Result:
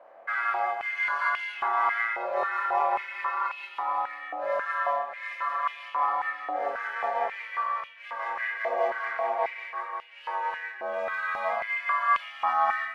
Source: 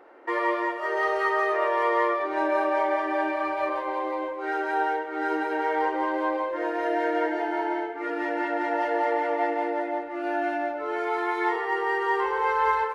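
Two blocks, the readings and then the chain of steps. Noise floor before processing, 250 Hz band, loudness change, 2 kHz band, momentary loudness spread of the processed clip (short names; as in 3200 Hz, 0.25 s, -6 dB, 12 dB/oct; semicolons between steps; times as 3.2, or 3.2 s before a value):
-33 dBFS, -24.0 dB, -2.5 dB, -0.5 dB, 8 LU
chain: ring modulator 220 Hz; flutter echo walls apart 4.6 m, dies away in 0.28 s; stepped high-pass 3.7 Hz 610–2800 Hz; gain -4.5 dB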